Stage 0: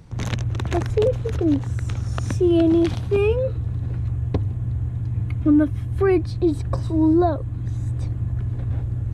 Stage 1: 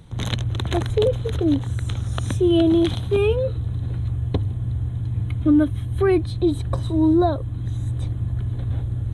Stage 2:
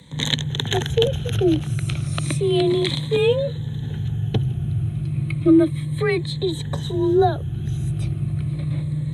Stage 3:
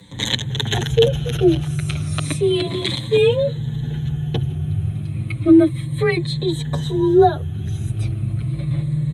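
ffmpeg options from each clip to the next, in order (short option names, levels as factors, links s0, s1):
-af "superequalizer=13b=2.51:14b=0.447:16b=2"
-af "afftfilt=real='re*pow(10,10/40*sin(2*PI*(1*log(max(b,1)*sr/1024/100)/log(2)-(-0.32)*(pts-256)/sr)))':imag='im*pow(10,10/40*sin(2*PI*(1*log(max(b,1)*sr/1024/100)/log(2)-(-0.32)*(pts-256)/sr)))':win_size=1024:overlap=0.75,highshelf=f=1600:t=q:w=1.5:g=6,afreqshift=31,volume=0.891"
-filter_complex "[0:a]asplit=2[s0][s1];[s1]adelay=7.4,afreqshift=0.38[s2];[s0][s2]amix=inputs=2:normalize=1,volume=1.78"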